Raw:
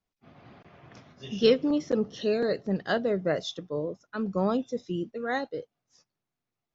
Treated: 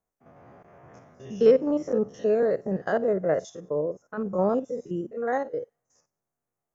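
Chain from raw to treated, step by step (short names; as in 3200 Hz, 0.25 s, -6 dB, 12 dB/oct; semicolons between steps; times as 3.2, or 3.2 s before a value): stepped spectrum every 50 ms; EQ curve 300 Hz 0 dB, 510 Hz +7 dB, 1800 Hz 0 dB, 4100 Hz -18 dB, 6500 Hz +3 dB; thin delay 94 ms, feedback 38%, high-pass 2400 Hz, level -24 dB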